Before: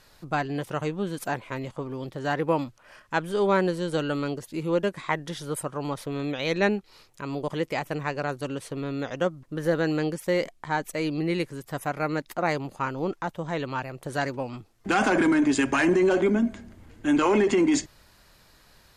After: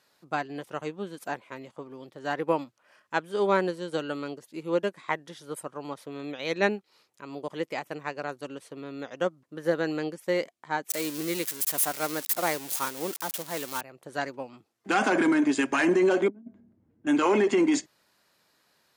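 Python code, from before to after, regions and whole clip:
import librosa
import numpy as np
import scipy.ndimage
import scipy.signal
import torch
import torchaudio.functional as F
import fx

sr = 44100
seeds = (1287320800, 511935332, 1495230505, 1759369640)

y = fx.chain(x, sr, fx.crossing_spikes(level_db=-18.0),
    fx.highpass(hz=130.0, slope=12), at=(10.9, 13.81))
y = fx.chain(y, sr, fx.bandpass_q(hz=100.0, q=0.81),
    fx.over_compress(threshold_db=-32.0, ratio=-0.5), at=(16.28, 17.07))
y = scipy.signal.sosfilt(scipy.signal.butter(2, 210.0, 'highpass', fs=sr, output='sos'), y)
y = fx.upward_expand(y, sr, threshold_db=-38.0, expansion=1.5)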